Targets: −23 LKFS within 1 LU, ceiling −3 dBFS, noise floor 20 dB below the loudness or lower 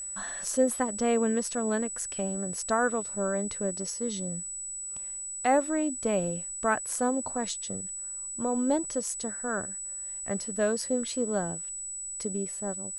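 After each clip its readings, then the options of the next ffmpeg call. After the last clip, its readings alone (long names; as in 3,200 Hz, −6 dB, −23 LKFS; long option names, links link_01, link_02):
interfering tone 7,900 Hz; level of the tone −35 dBFS; integrated loudness −30.0 LKFS; sample peak −12.0 dBFS; target loudness −23.0 LKFS
→ -af "bandreject=frequency=7900:width=30"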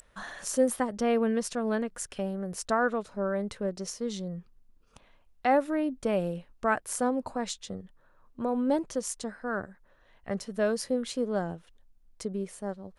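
interfering tone none found; integrated loudness −31.0 LKFS; sample peak −12.5 dBFS; target loudness −23.0 LKFS
→ -af "volume=8dB"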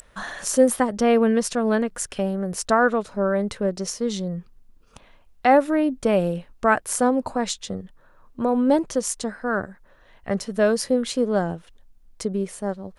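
integrated loudness −23.0 LKFS; sample peak −4.5 dBFS; background noise floor −54 dBFS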